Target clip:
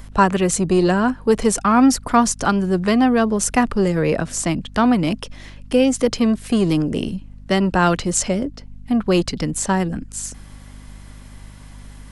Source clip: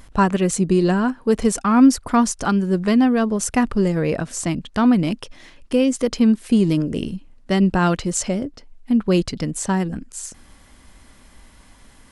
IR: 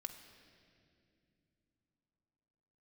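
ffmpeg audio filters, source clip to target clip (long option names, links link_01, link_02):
-filter_complex "[0:a]acrossover=split=310|630|1800[link_01][link_02][link_03][link_04];[link_01]asoftclip=type=tanh:threshold=-22.5dB[link_05];[link_05][link_02][link_03][link_04]amix=inputs=4:normalize=0,aeval=exprs='val(0)+0.00794*(sin(2*PI*50*n/s)+sin(2*PI*2*50*n/s)/2+sin(2*PI*3*50*n/s)/3+sin(2*PI*4*50*n/s)/4+sin(2*PI*5*50*n/s)/5)':channel_layout=same,volume=3.5dB"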